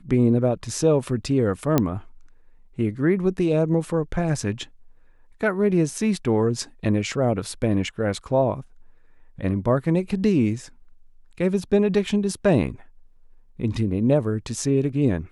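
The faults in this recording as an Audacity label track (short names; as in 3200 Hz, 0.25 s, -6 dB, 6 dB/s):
1.780000	1.780000	pop -5 dBFS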